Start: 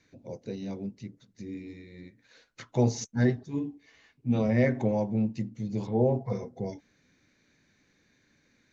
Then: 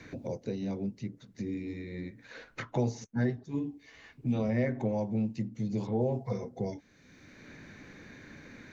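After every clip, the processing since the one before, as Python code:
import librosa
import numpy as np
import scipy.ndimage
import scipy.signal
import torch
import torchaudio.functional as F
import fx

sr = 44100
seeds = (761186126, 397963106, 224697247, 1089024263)

y = fx.band_squash(x, sr, depth_pct=70)
y = F.gain(torch.from_numpy(y), -2.5).numpy()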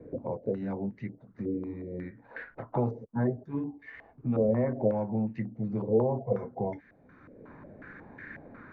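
y = fx.filter_held_lowpass(x, sr, hz=5.5, low_hz=500.0, high_hz=1800.0)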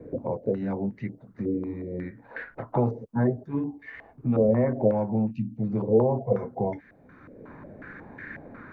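y = fx.spec_box(x, sr, start_s=5.31, length_s=0.27, low_hz=310.0, high_hz=2300.0, gain_db=-27)
y = F.gain(torch.from_numpy(y), 4.5).numpy()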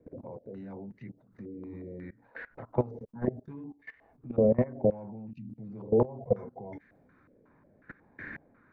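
y = fx.level_steps(x, sr, step_db=21)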